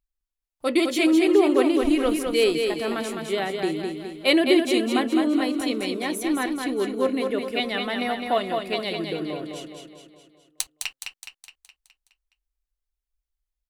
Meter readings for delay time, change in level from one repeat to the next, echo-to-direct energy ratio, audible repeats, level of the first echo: 209 ms, -5.5 dB, -3.5 dB, 6, -5.0 dB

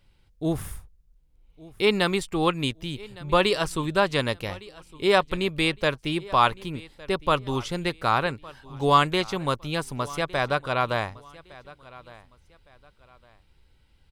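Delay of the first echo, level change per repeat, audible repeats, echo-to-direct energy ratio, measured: 1160 ms, -10.5 dB, 2, -20.5 dB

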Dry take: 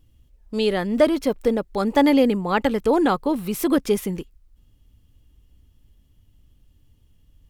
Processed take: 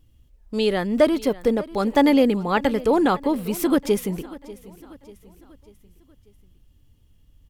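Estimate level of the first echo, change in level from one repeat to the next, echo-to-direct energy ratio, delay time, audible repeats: -19.0 dB, -6.5 dB, -18.0 dB, 591 ms, 3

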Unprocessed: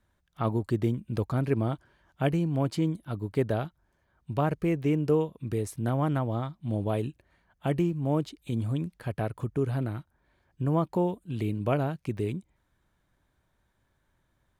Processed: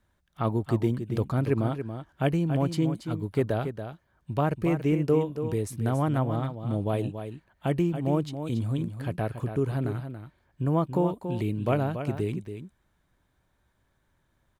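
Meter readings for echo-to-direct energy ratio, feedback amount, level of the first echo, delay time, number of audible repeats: -9.0 dB, no regular repeats, -9.0 dB, 281 ms, 1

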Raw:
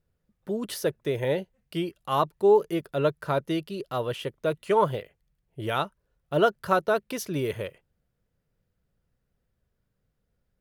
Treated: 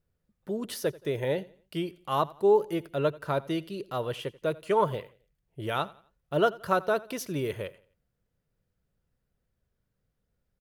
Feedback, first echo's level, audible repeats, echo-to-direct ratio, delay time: 36%, -21.0 dB, 2, -20.5 dB, 87 ms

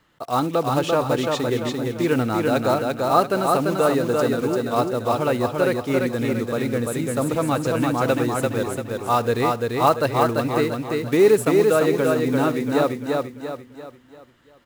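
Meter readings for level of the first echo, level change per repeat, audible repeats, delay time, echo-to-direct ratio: -21.0 dB, no regular repeats, 8, 71 ms, -2.0 dB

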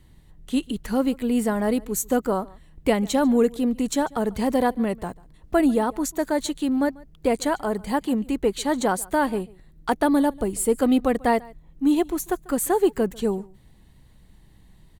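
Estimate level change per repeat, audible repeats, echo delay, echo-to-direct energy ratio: no regular repeats, 1, 143 ms, -23.5 dB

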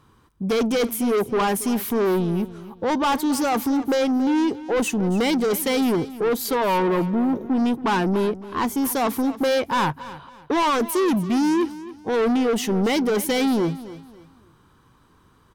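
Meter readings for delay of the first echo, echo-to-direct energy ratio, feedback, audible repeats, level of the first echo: 279 ms, -15.5 dB, 31%, 2, -16.0 dB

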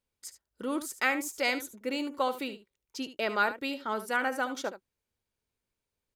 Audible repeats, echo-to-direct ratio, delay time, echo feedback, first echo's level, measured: 1, -12.5 dB, 73 ms, no regular repeats, -12.5 dB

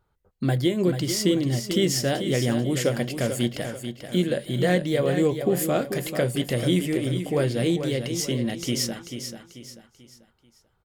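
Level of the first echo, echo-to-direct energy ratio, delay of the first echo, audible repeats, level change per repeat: -8.5 dB, -8.0 dB, 439 ms, 4, -8.5 dB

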